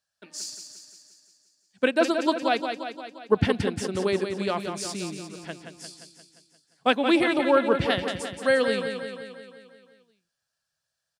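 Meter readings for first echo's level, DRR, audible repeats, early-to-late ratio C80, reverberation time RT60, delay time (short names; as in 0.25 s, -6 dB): -7.0 dB, none, 7, none, none, 0.175 s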